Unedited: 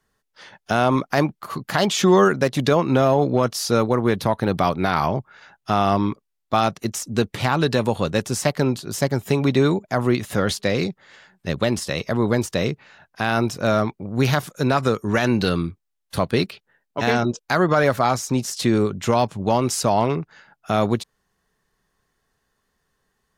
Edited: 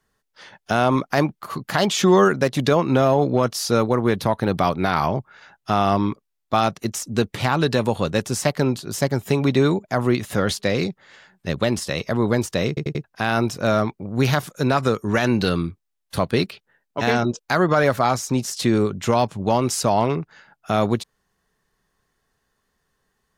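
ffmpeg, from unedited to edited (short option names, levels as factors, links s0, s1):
-filter_complex "[0:a]asplit=5[s0][s1][s2][s3][s4];[s0]atrim=end=12.772[s5];[s1]atrim=start=12.678:end=12.772[s6];[s2]atrim=start=12.678:end=12.772[s7];[s3]atrim=start=12.678:end=12.772[s8];[s4]atrim=start=13.038[s9];[s5][s6]acrossfade=d=0.004:c1=hsin:c2=hsin[s10];[s10][s7]acrossfade=d=0.004:c1=hsin:c2=hsin[s11];[s11][s8]acrossfade=d=0.004:c1=hsin:c2=hsin[s12];[s12][s9]acrossfade=d=0.004:c1=hsin:c2=hsin"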